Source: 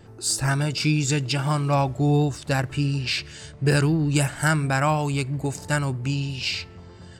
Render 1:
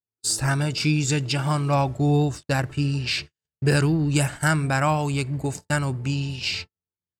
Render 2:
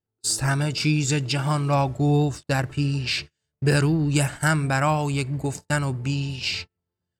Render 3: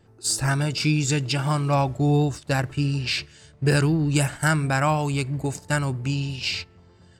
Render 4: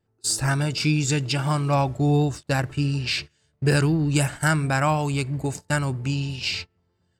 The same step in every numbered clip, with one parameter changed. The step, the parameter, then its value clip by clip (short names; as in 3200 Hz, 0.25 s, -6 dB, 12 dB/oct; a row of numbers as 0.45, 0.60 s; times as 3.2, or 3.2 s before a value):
gate, range: -55, -40, -9, -26 dB